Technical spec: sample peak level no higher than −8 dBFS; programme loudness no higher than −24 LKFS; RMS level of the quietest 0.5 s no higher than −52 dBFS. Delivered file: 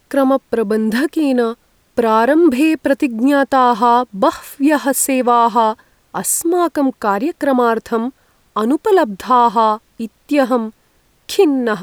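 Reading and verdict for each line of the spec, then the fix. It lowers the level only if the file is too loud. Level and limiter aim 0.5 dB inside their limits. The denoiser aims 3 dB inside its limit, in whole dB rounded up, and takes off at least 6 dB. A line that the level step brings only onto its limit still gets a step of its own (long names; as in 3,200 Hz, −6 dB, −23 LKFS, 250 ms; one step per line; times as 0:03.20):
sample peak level −2.0 dBFS: out of spec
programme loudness −15.0 LKFS: out of spec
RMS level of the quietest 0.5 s −57 dBFS: in spec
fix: level −9.5 dB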